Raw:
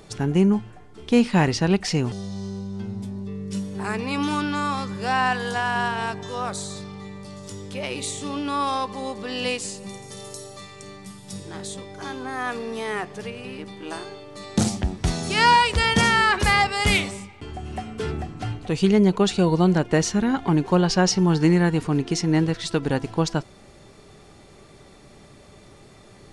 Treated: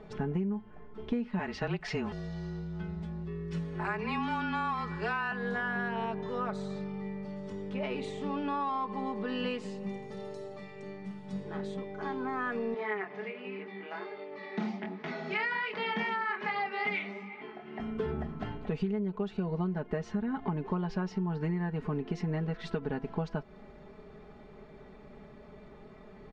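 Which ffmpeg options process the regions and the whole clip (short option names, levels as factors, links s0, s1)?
-filter_complex "[0:a]asettb=1/sr,asplit=3[s0][s1][s2];[s0]atrim=end=1.394[s3];[s1]atrim=start=1.39:end=5.32,asetpts=PTS-STARTPTS,afade=t=in:d=0.004:c=qsin,afade=t=out:st=3.926:d=0.004:c=qsin,tiltshelf=f=660:g=-5.5,afreqshift=-29[s4];[s2]atrim=start=5.316[s5];[s3][s4]acrossfade=d=0.004:c1=hsin:c2=qsin[s6];[s6][s5]acrossfade=d=0.004:c1=qsin:c2=hsin,asettb=1/sr,asplit=3[s7][s8][s9];[s7]atrim=end=12.744[s10];[s8]atrim=start=12.74:end=17.8,asetpts=PTS-STARTPTS,afade=t=in:d=0.004:c=qsin,afade=t=out:st=5.056:d=0.004:c=qsin,acompressor=mode=upward:threshold=0.0398:ratio=2.5:attack=3.2:release=140:knee=2.83:detection=peak,flanger=delay=20:depth=7.1:speed=1.3,highpass=f=220:w=0.5412,highpass=f=220:w=1.3066,equalizer=f=260:t=q:w=4:g=-7,equalizer=f=530:t=q:w=4:g=-7,equalizer=f=2100:t=q:w=4:g=9,lowpass=f=5400:w=0.5412,lowpass=f=5400:w=1.3066[s11];[s9]atrim=start=17.796[s12];[s10][s11]acrossfade=d=0.004:c1=hsin:c2=qsin[s13];[s13][s12]acrossfade=d=0.004:c1=qsin:c2=hsin,lowpass=1900,aecho=1:1:4.7:0.74,acompressor=threshold=0.0562:ratio=10,volume=0.631"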